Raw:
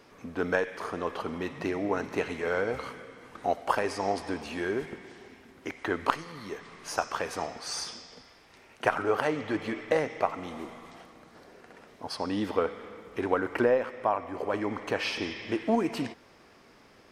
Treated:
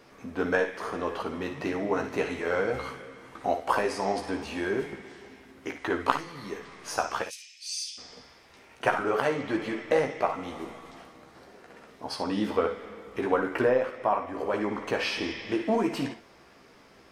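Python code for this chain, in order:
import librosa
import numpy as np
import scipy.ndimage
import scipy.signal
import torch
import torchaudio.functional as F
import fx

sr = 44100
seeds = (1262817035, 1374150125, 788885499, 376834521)

p1 = fx.ellip_highpass(x, sr, hz=2500.0, order=4, stop_db=60, at=(7.22, 7.97), fade=0.02)
y = p1 + fx.room_early_taps(p1, sr, ms=(15, 57, 71), db=(-5.5, -10.5, -12.0), dry=0)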